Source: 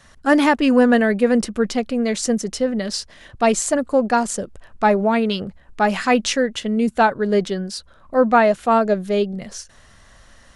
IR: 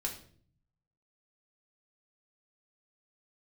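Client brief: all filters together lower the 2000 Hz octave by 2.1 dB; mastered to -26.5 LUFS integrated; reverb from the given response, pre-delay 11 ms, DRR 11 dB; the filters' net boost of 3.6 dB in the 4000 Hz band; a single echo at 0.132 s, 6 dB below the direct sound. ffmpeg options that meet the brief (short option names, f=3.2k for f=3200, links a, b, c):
-filter_complex "[0:a]equalizer=f=2k:t=o:g=-4,equalizer=f=4k:t=o:g=6,aecho=1:1:132:0.501,asplit=2[a][b];[1:a]atrim=start_sample=2205,adelay=11[c];[b][c]afir=irnorm=-1:irlink=0,volume=-12.5dB[d];[a][d]amix=inputs=2:normalize=0,volume=-8.5dB"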